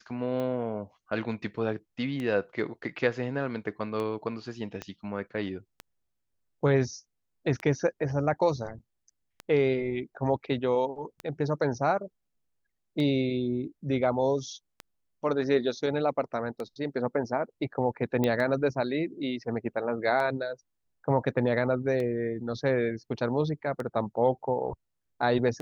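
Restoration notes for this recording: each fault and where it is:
tick 33 1/3 rpm -22 dBFS
4.82 pop -21 dBFS
18.24 pop -14 dBFS

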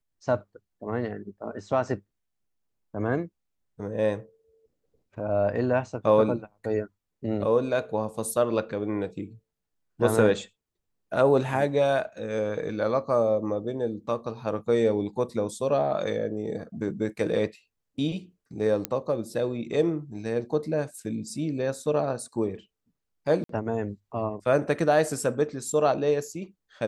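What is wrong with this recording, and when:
18.85 pop -10 dBFS
23.44–23.49 gap 53 ms

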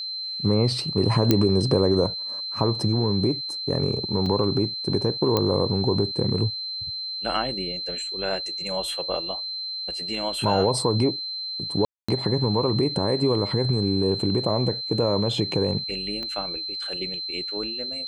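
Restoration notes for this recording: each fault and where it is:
tone 4100 Hz -29 dBFS
1.31 pop -4 dBFS
4.26 gap 3.8 ms
5.37 pop -8 dBFS
11.85–12.09 gap 0.235 s
16.23 pop -21 dBFS

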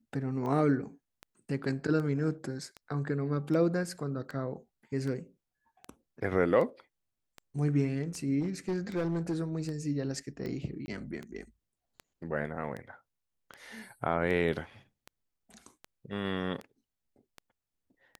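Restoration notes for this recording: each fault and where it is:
tick 78 rpm -27 dBFS
8.41–9.34 clipped -27 dBFS
10.86–10.88 gap 20 ms

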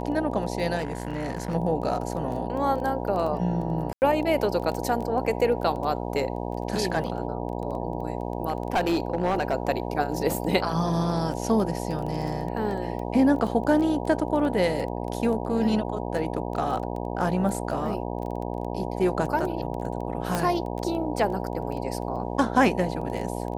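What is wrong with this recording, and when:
buzz 60 Hz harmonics 16 -31 dBFS
crackle 11/s -31 dBFS
0.77–1.55 clipped -24.5 dBFS
3.93–4.02 gap 89 ms
8.48–9.54 clipped -18.5 dBFS
20.35 pop -11 dBFS

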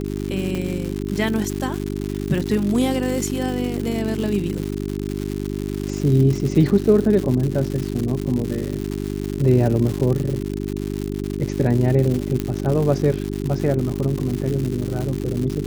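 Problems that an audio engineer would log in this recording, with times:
crackle 210/s -24 dBFS
hum 50 Hz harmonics 8 -26 dBFS
0.55 pop -14 dBFS
12.4 pop -10 dBFS

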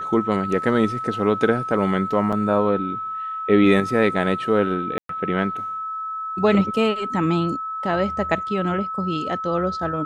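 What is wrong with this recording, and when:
tone 1300 Hz -26 dBFS
2.32–2.33 gap 5.8 ms
4.98–5.09 gap 0.113 s

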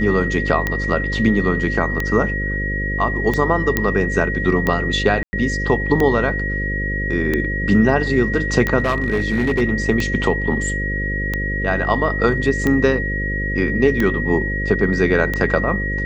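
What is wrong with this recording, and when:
buzz 50 Hz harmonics 11 -24 dBFS
tick 45 rpm -7 dBFS
tone 1900 Hz -23 dBFS
3.77 pop -3 dBFS
5.23–5.33 gap 0.1 s
8.79–9.62 clipped -13.5 dBFS

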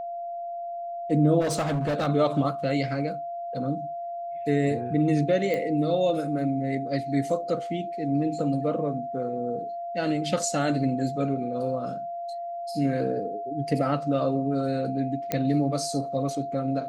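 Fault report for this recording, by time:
tone 690 Hz -31 dBFS
1.4–2.08 clipped -22.5 dBFS
5.54 pop -17 dBFS
15.32 pop -11 dBFS

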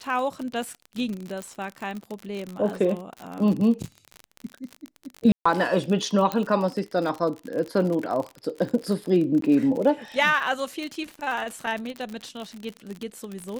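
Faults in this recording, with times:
crackle 48/s -29 dBFS
1.42 pop -20 dBFS
5.32–5.46 gap 0.135 s
6.32 pop -12 dBFS
9.41–9.42 gap 13 ms

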